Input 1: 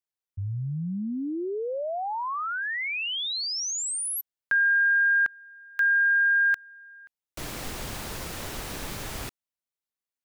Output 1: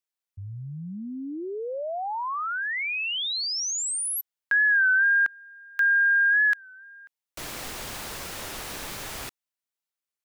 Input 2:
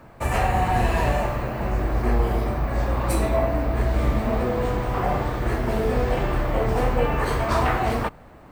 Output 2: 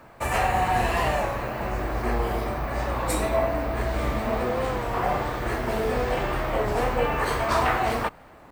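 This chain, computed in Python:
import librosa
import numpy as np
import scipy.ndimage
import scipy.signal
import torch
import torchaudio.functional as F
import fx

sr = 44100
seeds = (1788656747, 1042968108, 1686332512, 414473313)

y = fx.low_shelf(x, sr, hz=360.0, db=-8.5)
y = fx.record_warp(y, sr, rpm=33.33, depth_cents=100.0)
y = F.gain(torch.from_numpy(y), 1.5).numpy()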